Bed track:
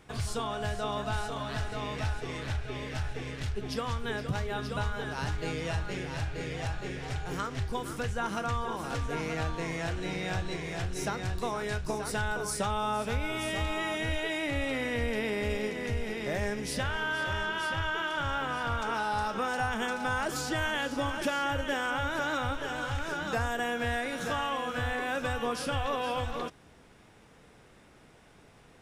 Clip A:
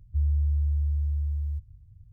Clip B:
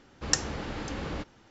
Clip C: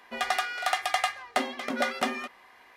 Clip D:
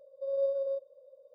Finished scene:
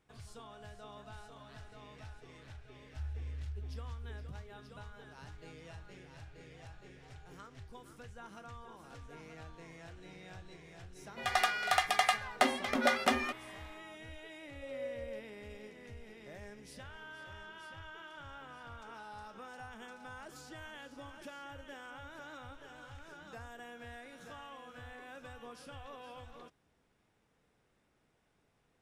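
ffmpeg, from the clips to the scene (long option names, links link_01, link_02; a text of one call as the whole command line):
ffmpeg -i bed.wav -i cue0.wav -i cue1.wav -i cue2.wav -i cue3.wav -filter_complex "[0:a]volume=-18dB[link_01];[3:a]dynaudnorm=framelen=100:gausssize=5:maxgain=11dB[link_02];[1:a]atrim=end=2.12,asetpts=PTS-STARTPTS,volume=-17dB,afade=type=in:duration=0.004:curve=hsin,afade=type=out:start_time=2.116:duration=0.004:curve=hsin,adelay=2820[link_03];[link_02]atrim=end=2.76,asetpts=PTS-STARTPTS,volume=-10dB,afade=type=in:duration=0.004:curve=hsin,afade=type=out:start_time=2.756:duration=0.004:curve=hsin,adelay=11050[link_04];[4:a]atrim=end=1.34,asetpts=PTS-STARTPTS,volume=-12dB,afade=type=in:duration=0.004:curve=hsin,afade=type=out:start_time=1.336:duration=0.004:curve=hsin,adelay=14410[link_05];[link_01][link_03][link_04][link_05]amix=inputs=4:normalize=0" out.wav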